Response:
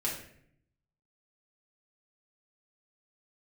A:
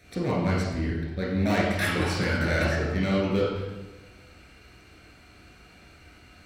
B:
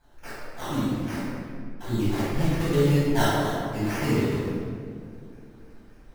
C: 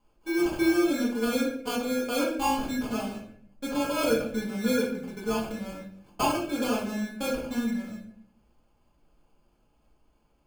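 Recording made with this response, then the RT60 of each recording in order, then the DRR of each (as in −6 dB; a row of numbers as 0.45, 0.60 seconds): C; 1.1, 2.4, 0.65 seconds; −4.5, −12.0, −5.5 decibels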